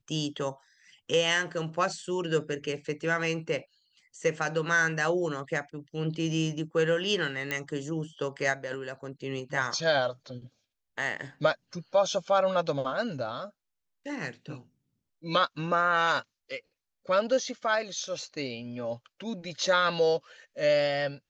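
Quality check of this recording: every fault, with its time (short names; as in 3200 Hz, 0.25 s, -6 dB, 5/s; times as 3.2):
7.51 pop -15 dBFS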